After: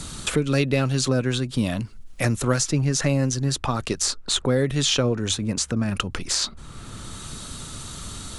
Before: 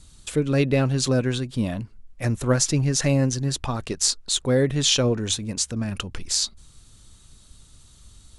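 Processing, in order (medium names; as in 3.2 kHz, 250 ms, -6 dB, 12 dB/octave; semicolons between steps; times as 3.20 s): peaking EQ 1.3 kHz +4.5 dB 0.3 oct; three bands compressed up and down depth 70%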